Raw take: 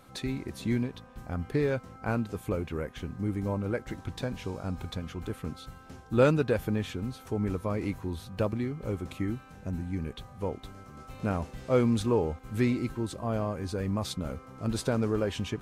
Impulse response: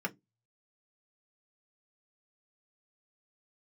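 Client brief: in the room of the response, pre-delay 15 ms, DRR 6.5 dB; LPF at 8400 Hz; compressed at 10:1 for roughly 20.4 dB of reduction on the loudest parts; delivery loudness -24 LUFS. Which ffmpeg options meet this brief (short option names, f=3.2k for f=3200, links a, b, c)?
-filter_complex "[0:a]lowpass=8.4k,acompressor=threshold=-38dB:ratio=10,asplit=2[a][b];[1:a]atrim=start_sample=2205,adelay=15[c];[b][c]afir=irnorm=-1:irlink=0,volume=-11dB[d];[a][d]amix=inputs=2:normalize=0,volume=18.5dB"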